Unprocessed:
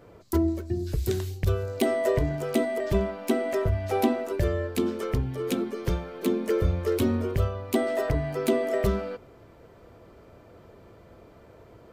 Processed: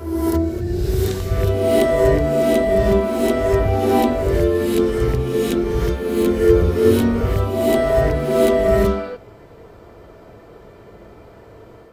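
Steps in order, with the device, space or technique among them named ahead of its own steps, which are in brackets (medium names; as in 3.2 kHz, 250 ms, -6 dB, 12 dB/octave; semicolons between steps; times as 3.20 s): reverse reverb (reverse; reverberation RT60 1.3 s, pre-delay 19 ms, DRR -4.5 dB; reverse); trim +3 dB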